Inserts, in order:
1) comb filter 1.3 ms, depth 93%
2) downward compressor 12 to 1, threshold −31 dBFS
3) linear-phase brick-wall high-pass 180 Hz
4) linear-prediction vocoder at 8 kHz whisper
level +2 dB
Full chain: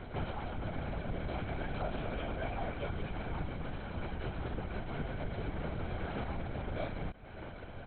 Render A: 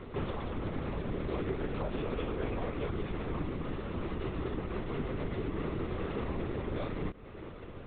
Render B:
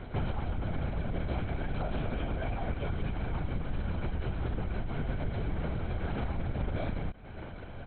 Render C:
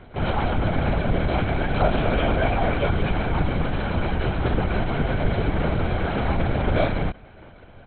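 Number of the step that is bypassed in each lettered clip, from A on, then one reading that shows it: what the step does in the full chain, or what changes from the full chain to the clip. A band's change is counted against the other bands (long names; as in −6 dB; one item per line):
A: 1, 250 Hz band +4.5 dB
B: 3, 125 Hz band +5.0 dB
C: 2, average gain reduction 14.0 dB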